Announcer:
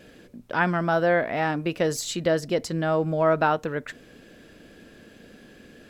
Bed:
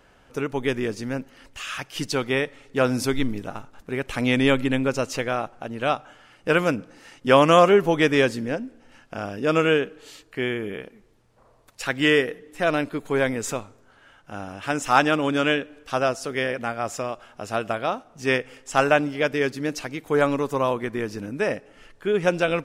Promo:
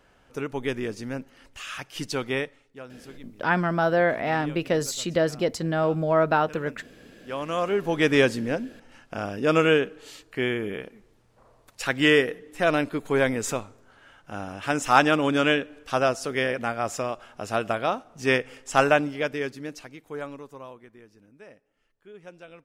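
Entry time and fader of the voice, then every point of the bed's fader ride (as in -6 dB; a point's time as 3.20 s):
2.90 s, 0.0 dB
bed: 2.41 s -4 dB
2.85 s -22.5 dB
7.11 s -22.5 dB
8.13 s 0 dB
18.82 s 0 dB
21.09 s -24 dB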